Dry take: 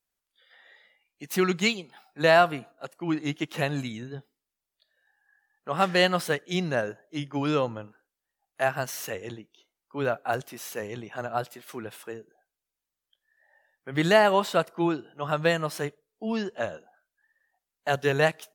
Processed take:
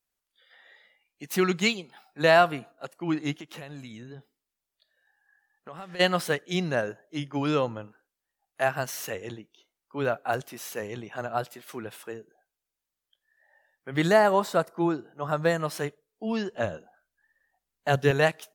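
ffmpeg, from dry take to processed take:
ffmpeg -i in.wav -filter_complex "[0:a]asplit=3[link_01][link_02][link_03];[link_01]afade=type=out:start_time=3.37:duration=0.02[link_04];[link_02]acompressor=threshold=-39dB:ratio=5:attack=3.2:release=140:knee=1:detection=peak,afade=type=in:start_time=3.37:duration=0.02,afade=type=out:start_time=5.99:duration=0.02[link_05];[link_03]afade=type=in:start_time=5.99:duration=0.02[link_06];[link_04][link_05][link_06]amix=inputs=3:normalize=0,asettb=1/sr,asplit=3[link_07][link_08][link_09];[link_07]atrim=end=14.074[link_10];[link_08]atrim=start=14.07:end=15.6,asetpts=PTS-STARTPTS,afade=type=in:duration=0.004:curve=qsin,afade=type=out:start_time=1.526:duration=0.004:curve=qsin,equalizer=frequency=2900:width_type=o:width=0.8:gain=-9.5[link_11];[link_09]atrim=start=15.596[link_12];[link_10][link_11]acrossfade=duration=0.004:curve1=hsin:curve2=qsin[link_13];[link_13][link_12]acrossfade=duration=0.004:curve1=qsin:curve2=hsin,asettb=1/sr,asplit=3[link_14][link_15][link_16];[link_14]atrim=end=16.544[link_17];[link_15]atrim=start=16.54:end=18.11,asetpts=PTS-STARTPTS,afade=type=in:duration=0.004:curve=qsin,afade=type=out:start_time=1.566:duration=0.004:curve=qsin,lowshelf=frequency=230:gain=10[link_18];[link_16]atrim=start=18.106[link_19];[link_17][link_18]acrossfade=duration=0.004:curve1=hsin:curve2=qsin[link_20];[link_20][link_19]acrossfade=duration=0.004:curve1=qsin:curve2=hsin" out.wav

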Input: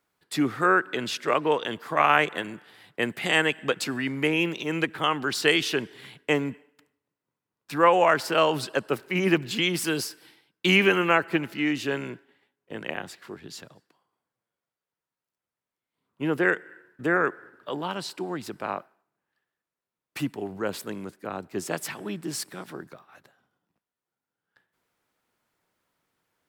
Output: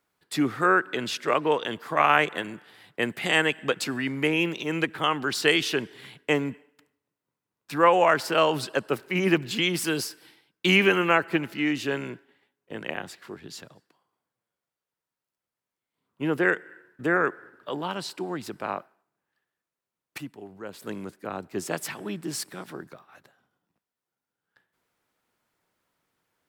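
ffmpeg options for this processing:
ffmpeg -i in.wav -filter_complex "[0:a]asplit=3[link_01][link_02][link_03];[link_01]atrim=end=20.182[link_04];[link_02]atrim=start=20.178:end=20.822,asetpts=PTS-STARTPTS,volume=-9.5dB[link_05];[link_03]atrim=start=20.818[link_06];[link_04][link_05]acrossfade=duration=0.004:curve1=hsin:curve2=hsin[link_07];[link_07][link_06]acrossfade=duration=0.004:curve1=hsin:curve2=hsin" out.wav

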